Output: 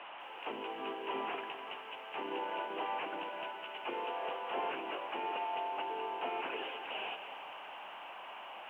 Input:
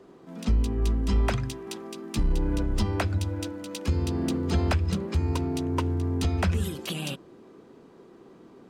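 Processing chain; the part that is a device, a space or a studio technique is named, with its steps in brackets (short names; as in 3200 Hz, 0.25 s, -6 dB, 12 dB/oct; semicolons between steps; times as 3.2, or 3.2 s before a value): spectral gate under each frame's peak -15 dB weak; digital answering machine (BPF 400–3200 Hz; delta modulation 16 kbps, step -46 dBFS; speaker cabinet 380–3100 Hz, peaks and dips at 490 Hz -3 dB, 870 Hz +5 dB, 1300 Hz -5 dB, 1900 Hz -5 dB, 2900 Hz +10 dB); lo-fi delay 0.202 s, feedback 55%, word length 12-bit, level -10 dB; gain +4 dB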